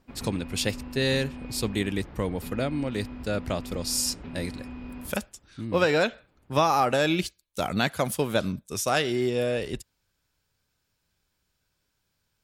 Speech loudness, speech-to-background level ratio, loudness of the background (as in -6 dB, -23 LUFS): -27.5 LUFS, 13.5 dB, -41.0 LUFS